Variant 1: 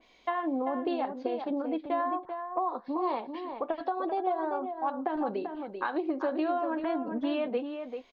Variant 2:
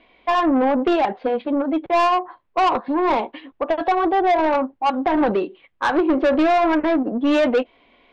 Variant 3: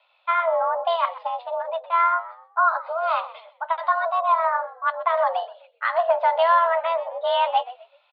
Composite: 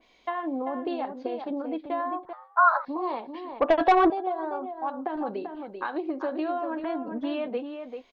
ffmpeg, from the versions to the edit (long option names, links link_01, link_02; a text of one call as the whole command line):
ffmpeg -i take0.wav -i take1.wav -i take2.wav -filter_complex "[0:a]asplit=3[link_01][link_02][link_03];[link_01]atrim=end=2.332[link_04];[2:a]atrim=start=2.328:end=2.852[link_05];[link_02]atrim=start=2.848:end=3.602[link_06];[1:a]atrim=start=3.598:end=4.102[link_07];[link_03]atrim=start=4.098[link_08];[link_04][link_05]acrossfade=duration=0.004:curve1=hsin:curve2=hsin[link_09];[link_09][link_06]acrossfade=duration=0.004:curve1=hsin:curve2=hsin[link_10];[link_10][link_07]acrossfade=duration=0.004:curve1=hsin:curve2=hsin[link_11];[link_11][link_08]acrossfade=duration=0.004:curve1=hsin:curve2=hsin" out.wav